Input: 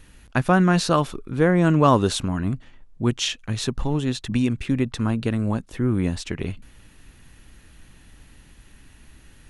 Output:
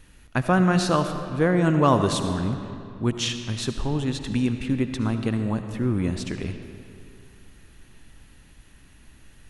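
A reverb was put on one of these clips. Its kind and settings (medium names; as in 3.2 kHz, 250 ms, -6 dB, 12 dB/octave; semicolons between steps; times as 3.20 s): algorithmic reverb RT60 2.5 s, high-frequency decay 0.7×, pre-delay 35 ms, DRR 7.5 dB; trim -2.5 dB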